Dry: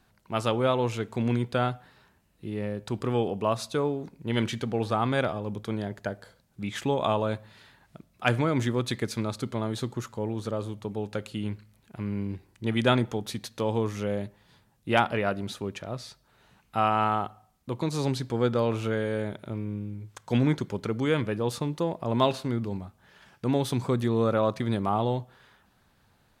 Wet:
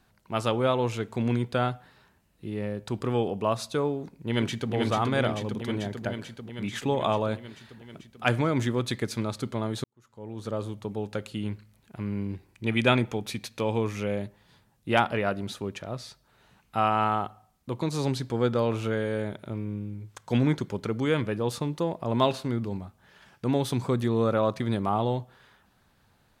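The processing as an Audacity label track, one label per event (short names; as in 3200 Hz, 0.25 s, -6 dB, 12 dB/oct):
3.960000	4.730000	echo throw 0.44 s, feedback 75%, level -3 dB
9.840000	10.550000	fade in quadratic
12.490000	14.190000	bell 2400 Hz +9.5 dB 0.26 oct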